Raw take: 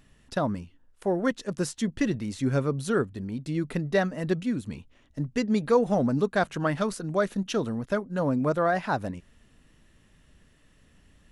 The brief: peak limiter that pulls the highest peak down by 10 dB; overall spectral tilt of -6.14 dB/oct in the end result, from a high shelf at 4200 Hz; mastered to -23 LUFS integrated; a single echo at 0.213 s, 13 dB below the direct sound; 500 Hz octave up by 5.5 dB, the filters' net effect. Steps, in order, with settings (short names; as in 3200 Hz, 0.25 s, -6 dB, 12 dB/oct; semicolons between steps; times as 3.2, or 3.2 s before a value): bell 500 Hz +6.5 dB; high shelf 4200 Hz +5.5 dB; limiter -16 dBFS; echo 0.213 s -13 dB; gain +4 dB